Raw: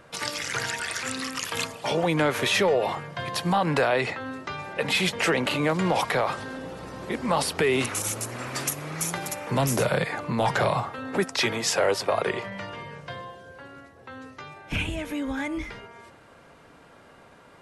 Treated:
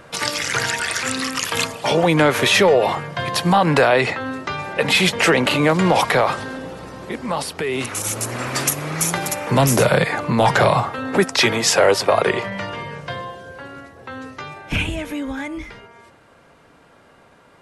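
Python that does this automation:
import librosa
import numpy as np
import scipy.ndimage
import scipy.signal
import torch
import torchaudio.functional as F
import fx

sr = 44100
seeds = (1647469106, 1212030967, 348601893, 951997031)

y = fx.gain(x, sr, db=fx.line((6.23, 8.0), (7.64, -1.5), (8.31, 8.5), (14.52, 8.5), (15.56, 1.0)))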